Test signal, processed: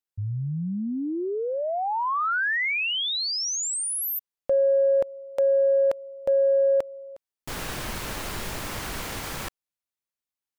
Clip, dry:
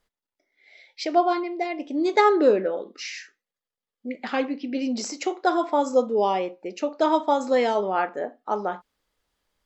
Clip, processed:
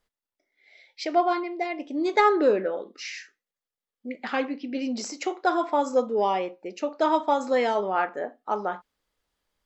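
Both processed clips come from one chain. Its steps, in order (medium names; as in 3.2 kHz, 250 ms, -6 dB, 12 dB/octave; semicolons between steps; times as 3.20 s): dynamic bell 1.5 kHz, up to +4 dB, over -38 dBFS, Q 0.73; in parallel at -9 dB: saturation -12.5 dBFS; on the sum: trim -5.5 dB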